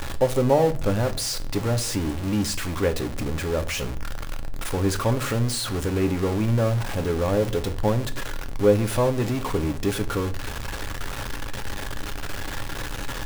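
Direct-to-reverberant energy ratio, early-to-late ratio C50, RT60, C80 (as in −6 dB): 8.0 dB, 17.0 dB, 0.45 s, 22.0 dB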